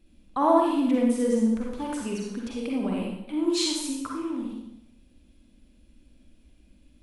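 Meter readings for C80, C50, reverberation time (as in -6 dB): 3.5 dB, -0.5 dB, 0.85 s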